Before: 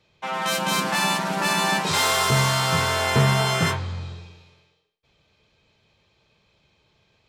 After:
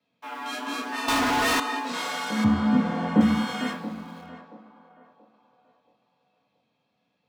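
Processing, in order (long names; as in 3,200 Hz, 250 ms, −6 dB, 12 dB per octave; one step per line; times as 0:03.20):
high-shelf EQ 5,600 Hz −10 dB
in parallel at −9 dB: bit-depth reduction 6 bits, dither none
on the sum: chorus effect 1.1 Hz, delay 16.5 ms, depth 7.8 ms
0:02.44–0:03.21: spectral tilt −4.5 dB per octave
rectangular room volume 2,400 cubic metres, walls furnished, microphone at 1.2 metres
frequency shifter +82 Hz
on a send: feedback echo with a band-pass in the loop 679 ms, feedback 40%, band-pass 660 Hz, level −11.5 dB
0:01.08–0:01.60: on the sum: leveller curve on the samples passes 5
level −8.5 dB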